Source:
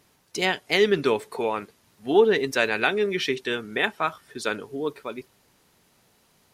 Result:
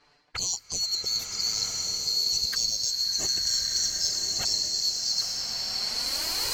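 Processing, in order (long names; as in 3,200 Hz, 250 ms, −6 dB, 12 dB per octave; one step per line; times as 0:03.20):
neighbouring bands swapped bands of 4,000 Hz
camcorder AGC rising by 17 dB per second
in parallel at −3.5 dB: soft clipping −22.5 dBFS, distortion −7 dB
on the sum: flanger swept by the level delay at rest 7.1 ms, full sweep at −17 dBFS
reversed playback
downward compressor 8 to 1, threshold −32 dBFS, peak gain reduction 15.5 dB
reversed playback
low-pass that shuts in the quiet parts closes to 2,200 Hz, open at −33.5 dBFS
slow-attack reverb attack 1,300 ms, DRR −0.5 dB
level +5.5 dB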